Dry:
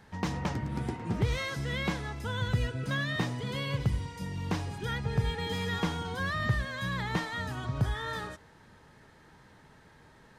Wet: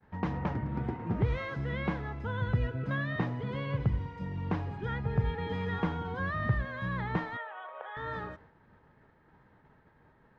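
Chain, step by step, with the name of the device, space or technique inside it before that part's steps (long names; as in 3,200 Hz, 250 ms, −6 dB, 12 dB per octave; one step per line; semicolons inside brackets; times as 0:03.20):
0:07.37–0:07.97: Chebyshev band-pass filter 500–3,400 Hz, order 4
hearing-loss simulation (low-pass filter 1,800 Hz 12 dB per octave; downward expander −52 dBFS)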